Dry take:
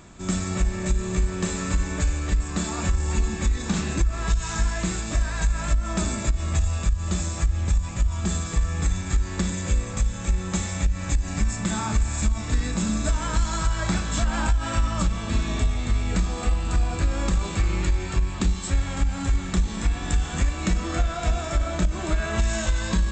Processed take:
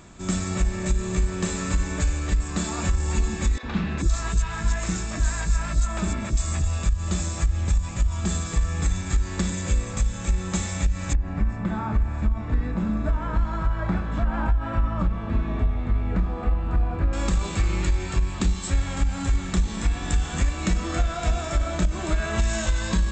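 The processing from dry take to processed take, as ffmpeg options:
-filter_complex "[0:a]asettb=1/sr,asplit=3[s0][s1][s2];[s0]atrim=end=3.584[s3];[s1]atrim=start=3.58:end=6.62,asetpts=PTS-STARTPTS,afade=t=in:d=0.004:c=qsin,afade=t=out:st=3.036:d=0.004:c=qsin,acrossover=split=490|3800[s4][s5][s6];[s4]adelay=50[s7];[s6]adelay=400[s8];[s7][s5][s8]amix=inputs=3:normalize=0,atrim=end_sample=134064[s9];[s2]atrim=start=6.616[s10];[s3][s9]acrossfade=d=0.004:c1=hsin:c2=qsin[s11];[s11][s10]acrossfade=d=0.004:c1=qsin:c2=hsin,asettb=1/sr,asplit=3[s12][s13][s14];[s12]atrim=end=11.134[s15];[s13]atrim=start=11.13:end=17.13,asetpts=PTS-STARTPTS,afade=t=in:d=0.004:c=qsin,afade=t=out:st=5.996:d=0.004:c=qsin,lowpass=1500[s16];[s14]atrim=start=17.126[s17];[s15][s16]acrossfade=d=0.004:c1=hsin:c2=qsin[s18];[s18][s17]acrossfade=d=0.004:c1=qsin:c2=hsin"

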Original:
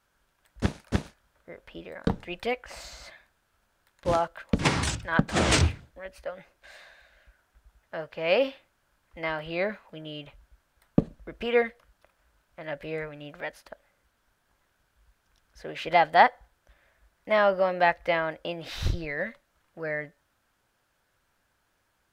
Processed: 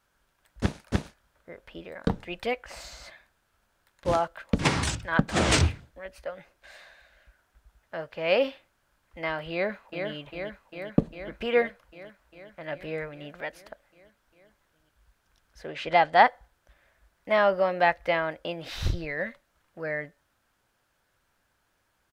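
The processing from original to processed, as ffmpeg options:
-filter_complex "[0:a]asplit=2[s0][s1];[s1]afade=t=in:st=9.52:d=0.01,afade=t=out:st=10.09:d=0.01,aecho=0:1:400|800|1200|1600|2000|2400|2800|3200|3600|4000|4400|4800:0.562341|0.421756|0.316317|0.237238|0.177928|0.133446|0.100085|0.0750635|0.0562976|0.0422232|0.0316674|0.0237506[s2];[s0][s2]amix=inputs=2:normalize=0,asettb=1/sr,asplit=3[s3][s4][s5];[s3]atrim=end=15.674[s6];[s4]atrim=start=15.67:end=16.26,asetpts=PTS-STARTPTS,afade=t=in:d=0.004:c=qsin,afade=t=out:st=0.586:d=0.004:c=qsin,lowpass=7900[s7];[s5]atrim=start=16.256[s8];[s6][s7]acrossfade=d=0.004:c1=hsin:c2=qsin[s9];[s9][s8]acrossfade=d=0.004:c1=qsin:c2=hsin"

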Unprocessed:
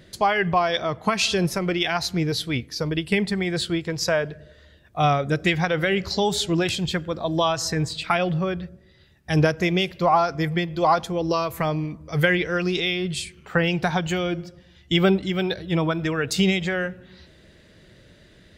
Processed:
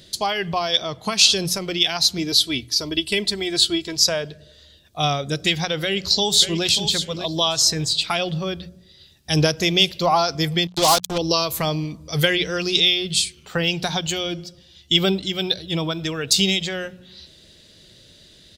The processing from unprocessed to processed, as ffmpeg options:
-filter_complex "[0:a]asettb=1/sr,asplit=3[s0][s1][s2];[s0]atrim=end=2.184[s3];[s1]atrim=start=2.18:end=3.97,asetpts=PTS-STARTPTS,afade=t=in:d=0.004:c=qsin,afade=t=out:st=1.786:d=0.004:c=qsin,aecho=1:1:3:0.65,atrim=end_sample=78939[s4];[s2]atrim=start=3.966[s5];[s3][s4]acrossfade=d=0.004:c1=hsin:c2=qsin[s6];[s6][s5]acrossfade=d=0.004:c1=qsin:c2=hsin,asplit=2[s7][s8];[s8]afade=t=in:st=5.82:d=0.01,afade=t=out:st=6.66:d=0.01,aecho=0:1:590|1180|1770:0.334965|0.0669931|0.0133986[s9];[s7][s9]amix=inputs=2:normalize=0,asettb=1/sr,asplit=3[s10][s11][s12];[s10]atrim=end=10.674[s13];[s11]atrim=start=10.67:end=11.18,asetpts=PTS-STARTPTS,afade=t=in:d=0.004:c=qsin,afade=t=out:st=0.506:d=0.004:c=qsin,acrusher=bits=3:mix=0:aa=0.5[s14];[s12]atrim=start=11.176[s15];[s13][s14]acrossfade=d=0.004:c1=hsin:c2=qsin[s16];[s16][s15]acrossfade=d=0.004:c1=qsin:c2=hsin,highshelf=f=2700:t=q:w=1.5:g=11,bandreject=f=60:t=h:w=6,bandreject=f=120:t=h:w=6,bandreject=f=180:t=h:w=6,dynaudnorm=f=230:g=21:m=3.76,volume=0.891"

